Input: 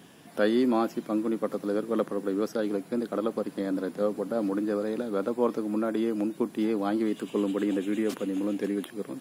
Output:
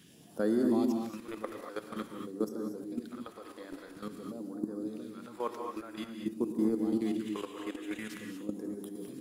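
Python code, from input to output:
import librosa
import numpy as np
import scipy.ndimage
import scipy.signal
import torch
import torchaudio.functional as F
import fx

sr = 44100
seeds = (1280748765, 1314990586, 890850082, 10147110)

y = fx.hum_notches(x, sr, base_hz=50, count=8)
y = fx.dynamic_eq(y, sr, hz=600.0, q=1.7, threshold_db=-38.0, ratio=4.0, max_db=-5)
y = fx.level_steps(y, sr, step_db=14)
y = fx.phaser_stages(y, sr, stages=2, low_hz=150.0, high_hz=2700.0, hz=0.49, feedback_pct=25)
y = fx.rev_gated(y, sr, seeds[0], gate_ms=260, shape='rising', drr_db=3.5)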